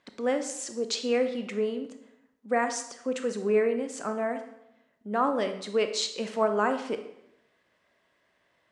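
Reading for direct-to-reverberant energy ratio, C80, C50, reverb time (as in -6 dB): 7.0 dB, 12.5 dB, 9.5 dB, 0.85 s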